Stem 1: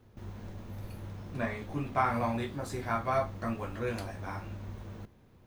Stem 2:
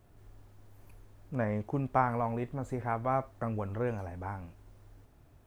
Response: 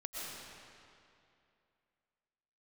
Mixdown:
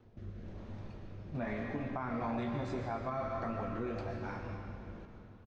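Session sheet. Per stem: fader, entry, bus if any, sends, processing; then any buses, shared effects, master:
+1.0 dB, 0.00 s, send −5.5 dB, low-pass filter 6,300 Hz 24 dB per octave; high-shelf EQ 4,000 Hz +5.5 dB; rotating-speaker cabinet horn 1.1 Hz; automatic ducking −8 dB, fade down 0.35 s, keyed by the second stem
−3.5 dB, 4.4 ms, no send, low-pass filter 1,600 Hz 24 dB per octave; frequency shifter mixed with the dry sound +1.8 Hz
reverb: on, RT60 2.6 s, pre-delay 80 ms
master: high-shelf EQ 3,900 Hz −12 dB; brickwall limiter −28 dBFS, peak gain reduction 9.5 dB

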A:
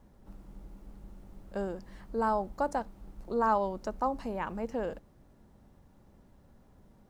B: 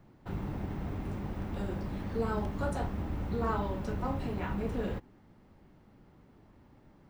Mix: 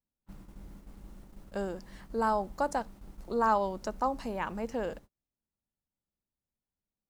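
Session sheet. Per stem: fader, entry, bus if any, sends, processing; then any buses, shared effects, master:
−0.5 dB, 0.00 s, no send, high-shelf EQ 2,000 Hz +7 dB
−4.5 dB, 0.00 s, no send, elliptic band-stop filter 310–900 Hz; downward compressor 2.5 to 1, threshold −48 dBFS, peak gain reduction 13 dB; automatic ducking −9 dB, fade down 1.30 s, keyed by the first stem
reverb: not used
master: noise gate −49 dBFS, range −36 dB

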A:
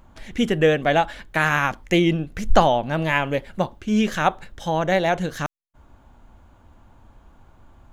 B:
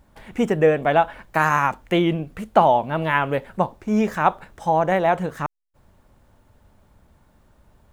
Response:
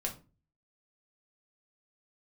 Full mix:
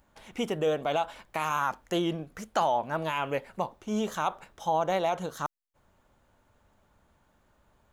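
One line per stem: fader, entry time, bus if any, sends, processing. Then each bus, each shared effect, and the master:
−14.5 dB, 0.00 s, no send, Chebyshev high-pass filter 1,200 Hz, order 3; high-shelf EQ 4,100 Hz +11.5 dB
−5.0 dB, 0.00 s, polarity flipped, no send, brickwall limiter −11.5 dBFS, peak gain reduction 9.5 dB; high-shelf EQ 5,700 Hz −11 dB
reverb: not used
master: low-shelf EQ 290 Hz −8 dB

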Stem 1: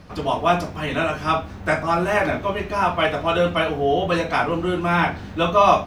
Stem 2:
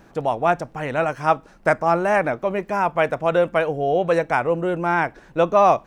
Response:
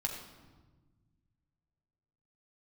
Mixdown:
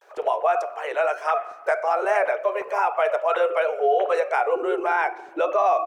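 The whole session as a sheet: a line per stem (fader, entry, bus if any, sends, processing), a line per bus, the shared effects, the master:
−4.0 dB, 0.00 s, send −4.5 dB, three sine waves on the formant tracks; low-pass filter 1,000 Hz 6 dB per octave
−3.0 dB, 12 ms, send −20.5 dB, Butterworth high-pass 390 Hz 72 dB per octave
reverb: on, RT60 1.3 s, pre-delay 7 ms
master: brickwall limiter −12 dBFS, peak gain reduction 8.5 dB

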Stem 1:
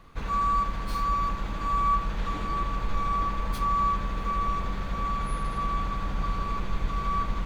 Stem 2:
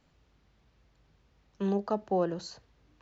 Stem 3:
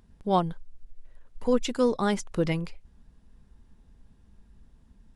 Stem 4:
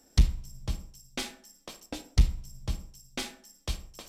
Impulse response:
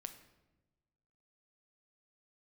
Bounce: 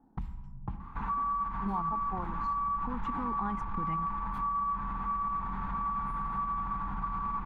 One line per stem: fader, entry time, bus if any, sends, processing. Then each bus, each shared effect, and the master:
−1.0 dB, 0.80 s, bus A, no send, no processing
−3.5 dB, 0.00 s, bus B, no send, multiband upward and downward expander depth 100%
+1.0 dB, 1.40 s, bus B, no send, no processing
+0.5 dB, 0.00 s, bus A, no send, low-pass that shuts in the quiet parts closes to 620 Hz, open at −18 dBFS; downward compressor 6 to 1, threshold −29 dBFS, peak gain reduction 13.5 dB
bus A: 0.0 dB, high-shelf EQ 6,000 Hz +7.5 dB; brickwall limiter −26 dBFS, peak gain reduction 11.5 dB
bus B: 0.0 dB, output level in coarse steps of 9 dB; brickwall limiter −24 dBFS, peak gain reduction 13.5 dB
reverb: not used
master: drawn EQ curve 110 Hz 0 dB, 210 Hz +6 dB, 580 Hz −12 dB, 890 Hz +14 dB, 5,200 Hz −21 dB; downward compressor 2.5 to 1, threshold −33 dBFS, peak gain reduction 9 dB

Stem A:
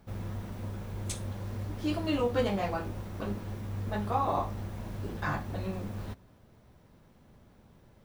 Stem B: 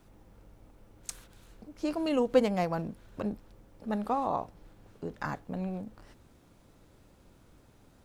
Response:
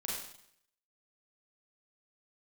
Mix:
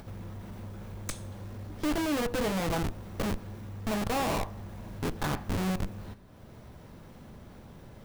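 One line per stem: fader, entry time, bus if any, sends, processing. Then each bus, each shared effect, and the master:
−4.0 dB, 0.00 s, send −12 dB, upward compression, threshold −33 dBFS; soft clipping −31 dBFS, distortion −9 dB
−3.5 dB, 0.00 s, no send, leveller curve on the samples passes 3; comparator with hysteresis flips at −23.5 dBFS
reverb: on, RT60 0.70 s, pre-delay 33 ms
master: no processing

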